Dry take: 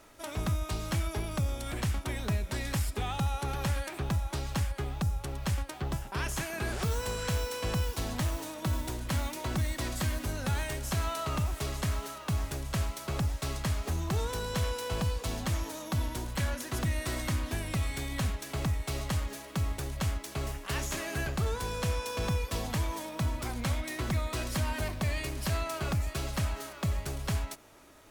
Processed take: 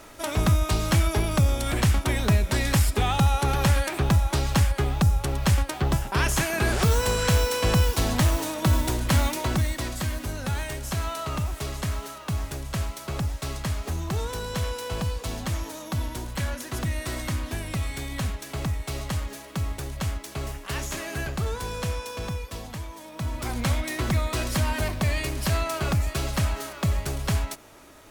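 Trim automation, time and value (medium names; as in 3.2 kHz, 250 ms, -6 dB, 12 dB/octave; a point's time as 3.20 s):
9.28 s +10 dB
9.94 s +2.5 dB
21.80 s +2.5 dB
22.95 s -5.5 dB
23.54 s +6.5 dB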